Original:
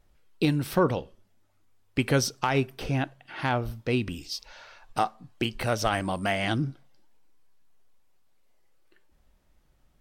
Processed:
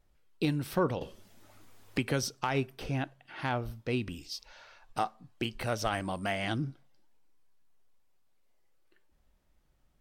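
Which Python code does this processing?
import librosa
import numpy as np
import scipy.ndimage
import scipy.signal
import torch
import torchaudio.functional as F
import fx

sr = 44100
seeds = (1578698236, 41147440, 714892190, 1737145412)

y = fx.band_squash(x, sr, depth_pct=70, at=(1.01, 2.23))
y = F.gain(torch.from_numpy(y), -5.5).numpy()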